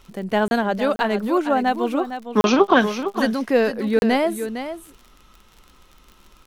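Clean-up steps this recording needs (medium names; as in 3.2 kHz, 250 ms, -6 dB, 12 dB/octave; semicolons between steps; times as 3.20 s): de-click; interpolate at 0.48/0.96/2.41/3.99 s, 31 ms; inverse comb 458 ms -10 dB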